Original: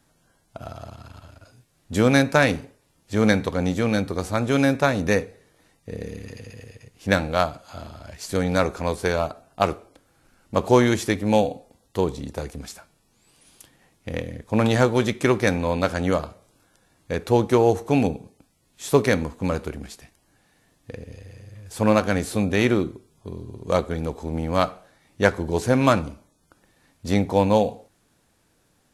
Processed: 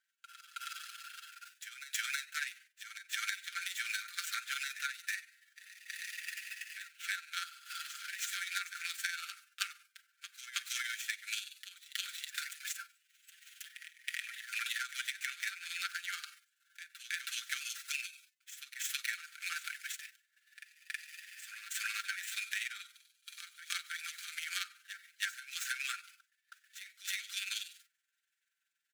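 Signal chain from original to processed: median filter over 9 samples; steep high-pass 1400 Hz 96 dB/oct; high shelf 2600 Hz +8.5 dB; comb 5.8 ms, depth 83%; compressor 20:1, threshold -37 dBFS, peak gain reduction 24 dB; expander -56 dBFS; AM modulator 21 Hz, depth 35%; on a send: reverse echo 0.321 s -11.5 dB; on the sum: gain +4.5 dB

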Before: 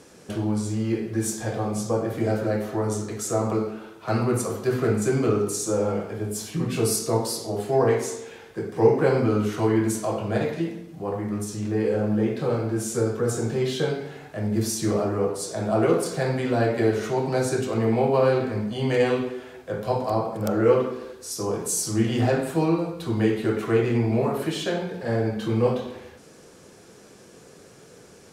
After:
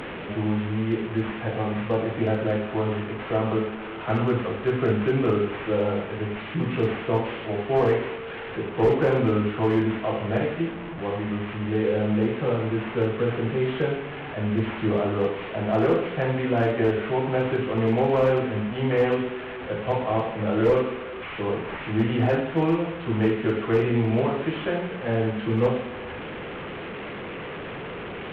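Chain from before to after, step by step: delta modulation 16 kbps, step -28.5 dBFS; one-sided clip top -15 dBFS

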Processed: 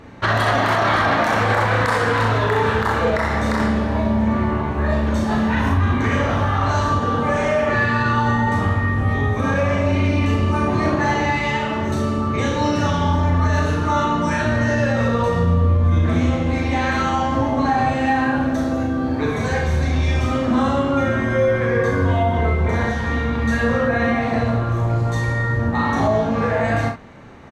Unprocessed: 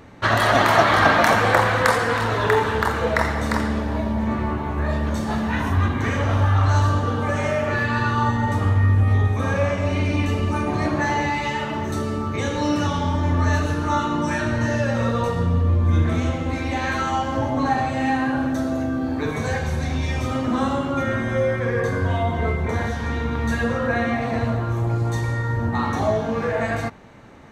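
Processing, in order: high shelf 8200 Hz -9 dB; early reflections 36 ms -5 dB, 65 ms -8.5 dB; maximiser +10.5 dB; gain -8 dB

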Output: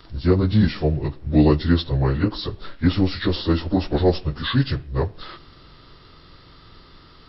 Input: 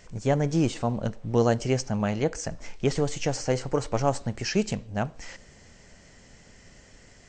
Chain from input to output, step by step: pitch shift by moving bins -7.5 st; gain +7.5 dB

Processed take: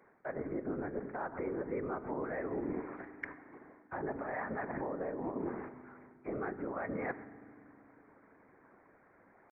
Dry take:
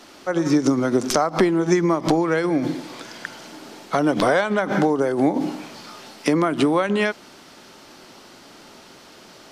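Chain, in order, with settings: steep low-pass 1900 Hz 96 dB/oct; gate -38 dBFS, range -9 dB; HPF 50 Hz; reverse; compressor 16:1, threshold -28 dBFS, peak gain reduction 16.5 dB; reverse; pitch shift +2.5 st; whisperiser; reverb RT60 2.3 s, pre-delay 4 ms, DRR 13.5 dB; gain -7 dB

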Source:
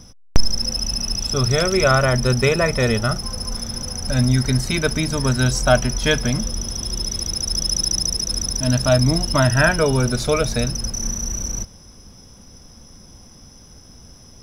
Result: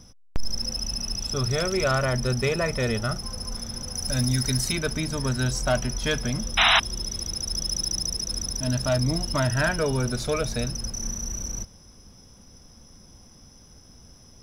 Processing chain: 3.94–4.71 high shelf 6000 Hz -> 3300 Hz +10.5 dB; soft clip -9 dBFS, distortion -16 dB; 6.57–6.8 painted sound noise 650–4000 Hz -12 dBFS; gain -6 dB

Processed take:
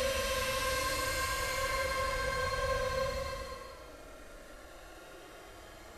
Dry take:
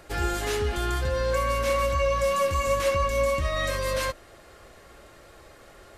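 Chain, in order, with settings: Paulstretch 27×, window 0.05 s, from 3.99; upward compressor, threshold -36 dBFS; gain -6 dB

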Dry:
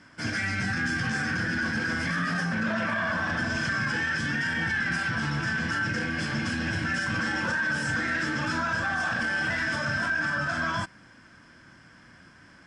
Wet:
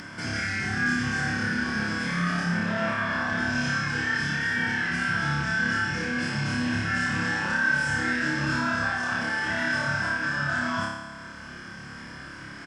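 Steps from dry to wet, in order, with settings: doubler 42 ms -12.5 dB; flutter echo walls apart 4.9 m, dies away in 0.91 s; upward compressor, threshold -26 dBFS; gain -3.5 dB

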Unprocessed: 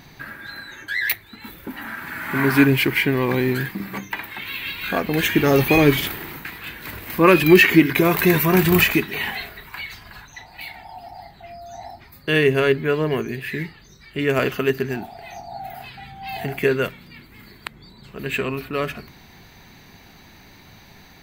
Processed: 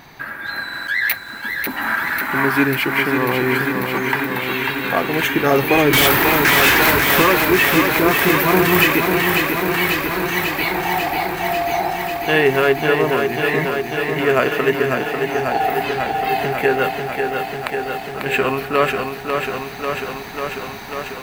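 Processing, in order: bell 960 Hz +10.5 dB 2.9 oct; AGC gain up to 9 dB; high shelf 6000 Hz +5.5 dB; 5.93–7.22 sample leveller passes 5; stuck buffer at 0.64, samples 2048, times 4; lo-fi delay 0.544 s, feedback 80%, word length 7-bit, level -5 dB; gain -3 dB

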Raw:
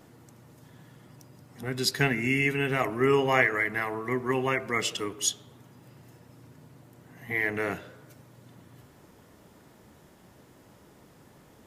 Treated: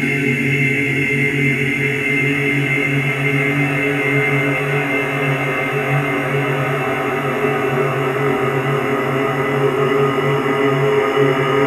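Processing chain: Paulstretch 14×, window 1.00 s, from 2.31; flutter echo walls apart 3.6 m, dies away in 0.26 s; gain +7 dB

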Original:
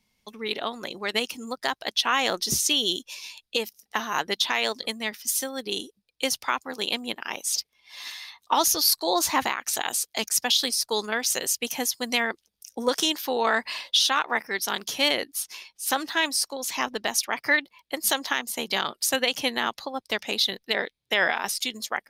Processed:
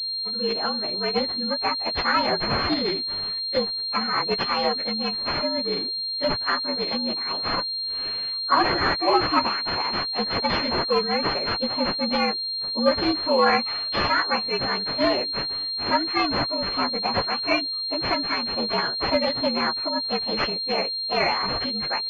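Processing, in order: inharmonic rescaling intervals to 114%; pulse-width modulation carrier 4200 Hz; gain +8 dB

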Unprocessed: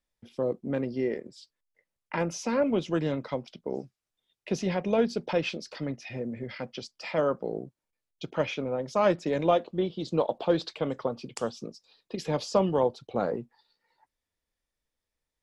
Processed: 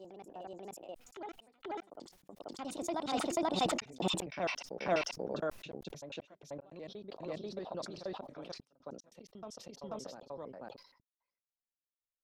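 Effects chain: slices in reverse order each 86 ms, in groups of 4; Doppler pass-by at 5.35, 46 m/s, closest 3.5 m; bell 6200 Hz -5.5 dB 0.22 oct; in parallel at -2 dB: compressor, threshold -57 dBFS, peak gain reduction 24.5 dB; on the sum: varispeed +26%; step gate "xxxxxxx.x..." 75 bpm -60 dB; on a send: reverse echo 0.486 s -4 dB; on the sum: sustainer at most 86 dB/s; gain +14 dB

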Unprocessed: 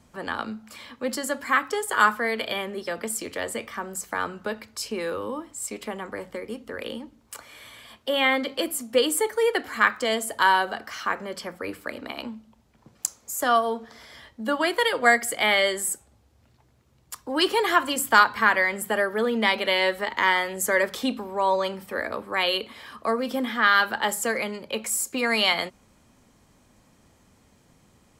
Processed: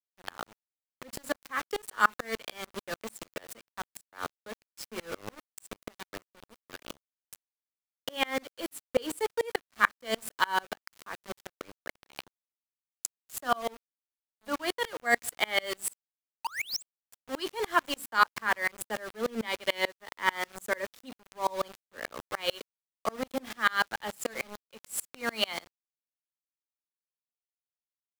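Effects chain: painted sound rise, 16.44–16.83, 830–8600 Hz -26 dBFS; sample gate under -28 dBFS; dB-ramp tremolo swelling 6.8 Hz, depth 32 dB

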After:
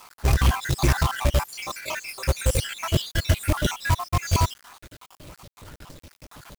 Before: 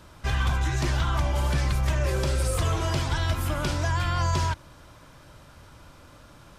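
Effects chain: random spectral dropouts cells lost 68%; 1.57–2.27 HPF 360 Hz -> 1300 Hz 12 dB/oct; companded quantiser 4-bit; gain +7 dB

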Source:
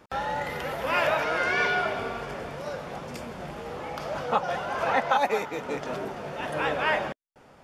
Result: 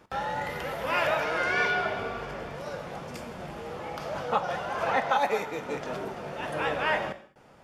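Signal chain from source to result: 1.71–2.55 bell 9800 Hz -5 dB 1 oct; non-linear reverb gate 0.24 s falling, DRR 10 dB; gain -2 dB

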